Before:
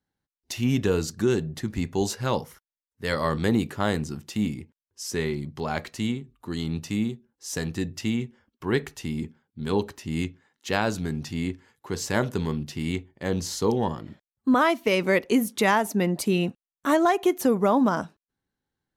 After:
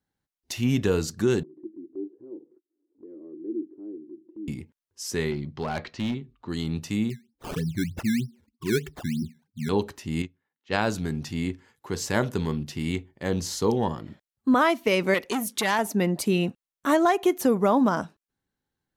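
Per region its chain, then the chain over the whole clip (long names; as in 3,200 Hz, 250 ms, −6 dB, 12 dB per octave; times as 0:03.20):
0:01.43–0:04.48: flat-topped band-pass 330 Hz, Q 5.1 + upward compression, threshold −40 dBFS
0:05.31–0:06.49: low-pass filter 5,100 Hz 24 dB per octave + hard clipping −23 dBFS
0:07.10–0:09.69: expanding power law on the bin magnitudes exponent 2.4 + comb filter 0.8 ms, depth 41% + sample-and-hold swept by an LFO 16× 3.2 Hz
0:10.22–0:10.78: low-pass that shuts in the quiet parts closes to 2,300 Hz, open at −22.5 dBFS + low-pass filter 9,100 Hz 24 dB per octave + expander for the loud parts 2.5 to 1, over −34 dBFS
0:15.14–0:15.79: tilt shelving filter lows −4 dB, about 1,300 Hz + saturating transformer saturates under 1,500 Hz
whole clip: no processing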